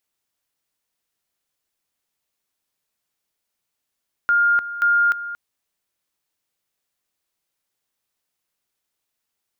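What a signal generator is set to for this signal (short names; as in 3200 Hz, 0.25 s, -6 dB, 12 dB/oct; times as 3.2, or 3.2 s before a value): two-level tone 1410 Hz -13.5 dBFS, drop 13.5 dB, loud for 0.30 s, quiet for 0.23 s, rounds 2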